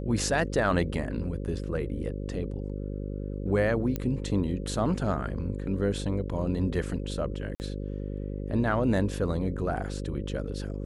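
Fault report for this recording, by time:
mains buzz 50 Hz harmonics 11 −34 dBFS
0:03.96: click −17 dBFS
0:07.55–0:07.60: drop-out 49 ms

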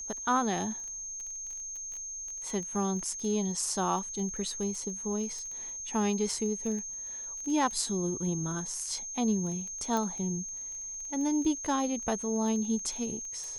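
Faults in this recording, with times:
surface crackle 16 per second −37 dBFS
whistle 6,400 Hz −37 dBFS
0:09.97: click

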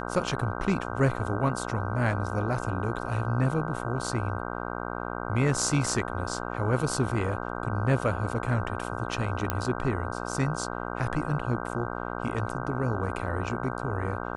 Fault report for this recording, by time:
mains buzz 60 Hz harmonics 26 −34 dBFS
0:09.50: click −11 dBFS

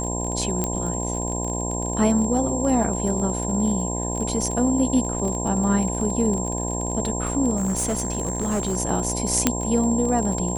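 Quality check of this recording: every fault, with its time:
mains buzz 60 Hz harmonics 17 −28 dBFS
surface crackle 31 per second −27 dBFS
whistle 7,500 Hz −29 dBFS
0:00.64: click −9 dBFS
0:07.56–0:08.77: clipping −19.5 dBFS
0:09.47: click −1 dBFS

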